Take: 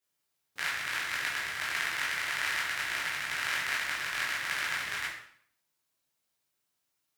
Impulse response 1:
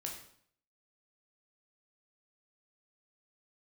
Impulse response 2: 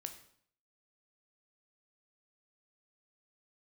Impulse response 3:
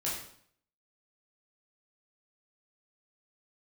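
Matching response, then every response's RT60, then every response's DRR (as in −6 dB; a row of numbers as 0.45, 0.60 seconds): 3; 0.60, 0.60, 0.60 seconds; 0.0, 6.5, −6.5 decibels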